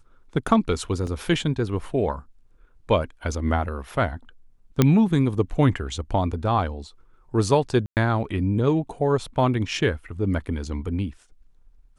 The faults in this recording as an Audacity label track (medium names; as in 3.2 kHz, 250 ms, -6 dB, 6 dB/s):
1.070000	1.070000	dropout 2.1 ms
4.820000	4.820000	pop -4 dBFS
7.860000	7.970000	dropout 108 ms